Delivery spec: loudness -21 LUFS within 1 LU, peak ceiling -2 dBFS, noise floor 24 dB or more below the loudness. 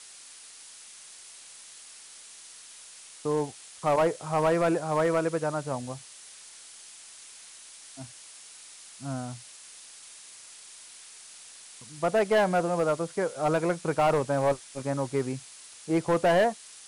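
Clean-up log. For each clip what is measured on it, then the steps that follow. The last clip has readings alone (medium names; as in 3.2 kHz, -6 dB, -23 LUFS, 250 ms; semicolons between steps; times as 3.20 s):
clipped samples 1.0%; clipping level -18.0 dBFS; noise floor -49 dBFS; noise floor target -52 dBFS; loudness -27.5 LUFS; peak level -18.0 dBFS; loudness target -21.0 LUFS
-> clip repair -18 dBFS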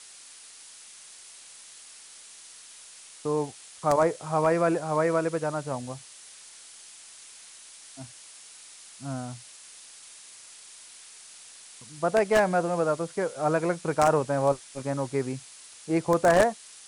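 clipped samples 0.0%; noise floor -49 dBFS; noise floor target -51 dBFS
-> noise print and reduce 6 dB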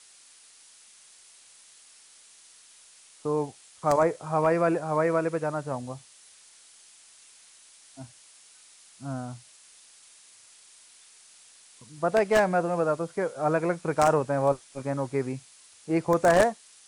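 noise floor -55 dBFS; loudness -26.5 LUFS; peak level -9.0 dBFS; loudness target -21.0 LUFS
-> trim +5.5 dB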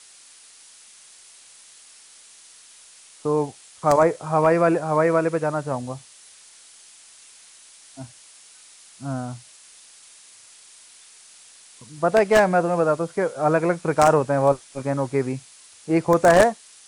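loudness -21.0 LUFS; peak level -3.5 dBFS; noise floor -49 dBFS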